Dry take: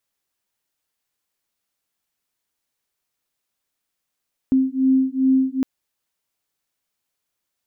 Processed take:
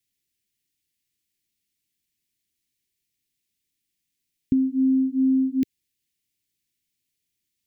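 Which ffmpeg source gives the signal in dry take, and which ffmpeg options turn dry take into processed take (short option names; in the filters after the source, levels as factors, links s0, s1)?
-f lavfi -i "aevalsrc='0.126*(sin(2*PI*262*t)+sin(2*PI*264.5*t))':d=1.11:s=44100"
-af "acompressor=threshold=0.112:ratio=6,asuperstop=centerf=870:order=8:qfactor=0.56,equalizer=f=110:w=0.7:g=4"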